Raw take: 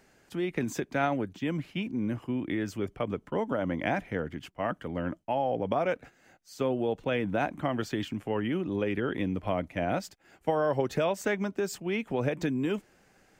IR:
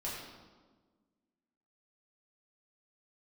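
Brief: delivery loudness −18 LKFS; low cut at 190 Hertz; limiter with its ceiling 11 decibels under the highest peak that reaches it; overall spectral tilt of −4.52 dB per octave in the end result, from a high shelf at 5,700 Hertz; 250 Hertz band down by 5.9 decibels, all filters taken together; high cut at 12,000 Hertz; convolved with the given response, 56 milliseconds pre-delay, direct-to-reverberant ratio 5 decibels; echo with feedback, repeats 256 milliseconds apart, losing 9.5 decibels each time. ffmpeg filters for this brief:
-filter_complex "[0:a]highpass=190,lowpass=12000,equalizer=frequency=250:width_type=o:gain=-6,highshelf=frequency=5700:gain=5,alimiter=level_in=1.5dB:limit=-24dB:level=0:latency=1,volume=-1.5dB,aecho=1:1:256|512|768|1024:0.335|0.111|0.0365|0.012,asplit=2[link_01][link_02];[1:a]atrim=start_sample=2205,adelay=56[link_03];[link_02][link_03]afir=irnorm=-1:irlink=0,volume=-7dB[link_04];[link_01][link_04]amix=inputs=2:normalize=0,volume=17dB"

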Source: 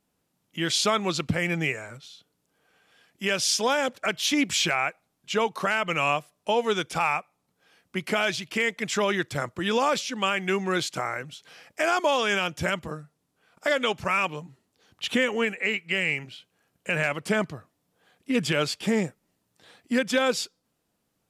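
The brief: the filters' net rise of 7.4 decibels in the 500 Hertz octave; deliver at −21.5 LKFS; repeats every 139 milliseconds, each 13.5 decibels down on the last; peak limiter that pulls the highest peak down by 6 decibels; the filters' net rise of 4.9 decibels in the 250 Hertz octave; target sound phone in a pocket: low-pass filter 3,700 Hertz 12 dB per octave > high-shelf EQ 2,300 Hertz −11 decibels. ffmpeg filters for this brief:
ffmpeg -i in.wav -af "equalizer=frequency=250:width_type=o:gain=4,equalizer=frequency=500:width_type=o:gain=8.5,alimiter=limit=-12dB:level=0:latency=1,lowpass=3700,highshelf=frequency=2300:gain=-11,aecho=1:1:139|278:0.211|0.0444,volume=3.5dB" out.wav

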